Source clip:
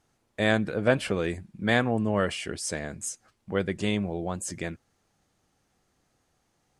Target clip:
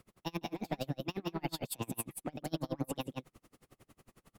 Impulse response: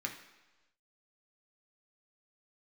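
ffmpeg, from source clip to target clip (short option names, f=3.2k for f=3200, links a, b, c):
-filter_complex "[0:a]acrossover=split=1300[a][b];[a]asoftclip=type=tanh:threshold=-22.5dB[c];[c][b]amix=inputs=2:normalize=0,acrossover=split=110|7800[d][e][f];[d]acompressor=threshold=-48dB:ratio=4[g];[e]acompressor=threshold=-37dB:ratio=4[h];[f]acompressor=threshold=-54dB:ratio=4[i];[g][h][i]amix=inputs=3:normalize=0,asetrate=68355,aresample=44100,areverse,acompressor=threshold=-43dB:ratio=6,areverse,lowshelf=f=490:g=6.5,aecho=1:1:164:0.596,aeval=exprs='val(0)*pow(10,-34*(0.5-0.5*cos(2*PI*11*n/s))/20)':c=same,volume=10dB"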